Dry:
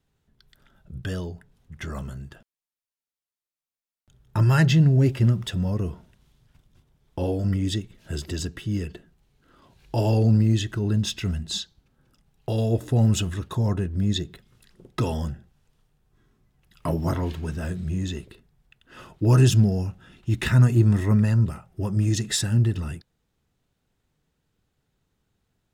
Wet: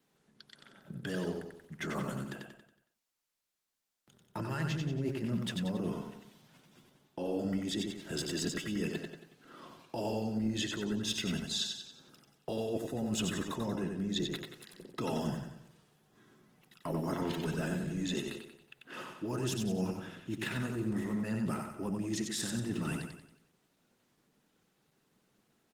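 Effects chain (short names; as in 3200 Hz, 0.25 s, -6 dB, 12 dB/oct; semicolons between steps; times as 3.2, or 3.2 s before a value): HPF 170 Hz 24 dB/oct; reverse; compressor 10:1, threshold -37 dBFS, peak gain reduction 19.5 dB; reverse; feedback echo 92 ms, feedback 46%, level -4.5 dB; gain +4.5 dB; Opus 20 kbps 48000 Hz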